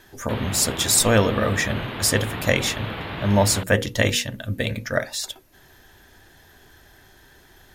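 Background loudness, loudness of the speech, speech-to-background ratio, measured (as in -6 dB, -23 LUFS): -32.0 LUFS, -22.0 LUFS, 10.0 dB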